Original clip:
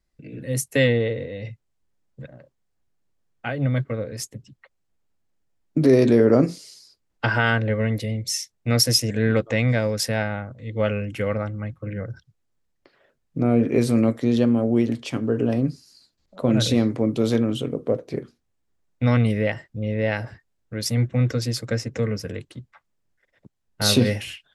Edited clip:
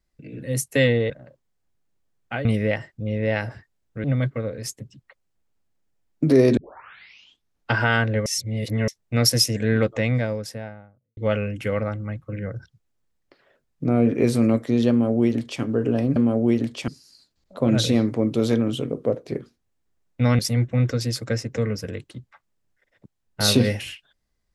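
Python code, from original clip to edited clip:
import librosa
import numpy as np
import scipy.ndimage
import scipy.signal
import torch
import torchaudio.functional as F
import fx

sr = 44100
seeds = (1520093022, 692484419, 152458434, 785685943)

y = fx.studio_fade_out(x, sr, start_s=9.31, length_s=1.4)
y = fx.edit(y, sr, fx.cut(start_s=1.1, length_s=1.13),
    fx.tape_start(start_s=6.11, length_s=1.14),
    fx.reverse_span(start_s=7.8, length_s=0.62),
    fx.duplicate(start_s=14.44, length_s=0.72, to_s=15.7),
    fx.move(start_s=19.21, length_s=1.59, to_s=3.58), tone=tone)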